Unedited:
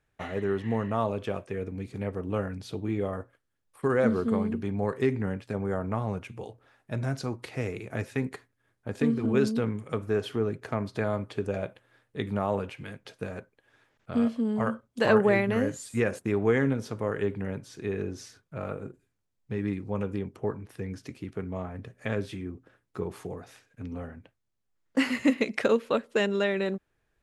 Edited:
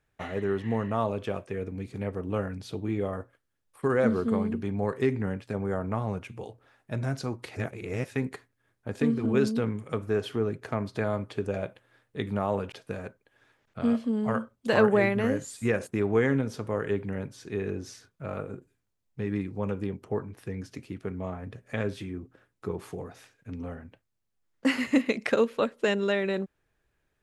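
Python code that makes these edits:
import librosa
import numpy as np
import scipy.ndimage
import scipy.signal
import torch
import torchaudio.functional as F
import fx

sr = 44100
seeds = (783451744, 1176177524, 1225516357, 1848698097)

y = fx.edit(x, sr, fx.reverse_span(start_s=7.56, length_s=0.49),
    fx.cut(start_s=12.72, length_s=0.32), tone=tone)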